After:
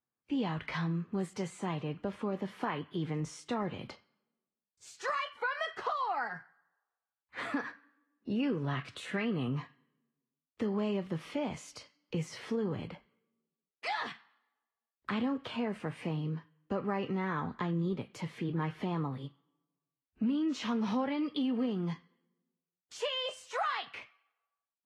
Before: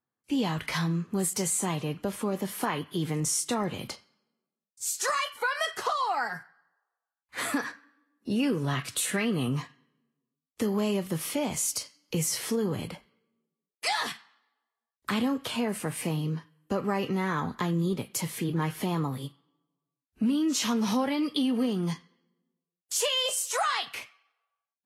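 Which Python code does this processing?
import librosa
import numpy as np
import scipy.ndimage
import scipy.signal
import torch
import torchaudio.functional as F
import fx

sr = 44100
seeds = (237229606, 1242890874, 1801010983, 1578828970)

y = scipy.signal.sosfilt(scipy.signal.butter(2, 2900.0, 'lowpass', fs=sr, output='sos'), x)
y = F.gain(torch.from_numpy(y), -5.0).numpy()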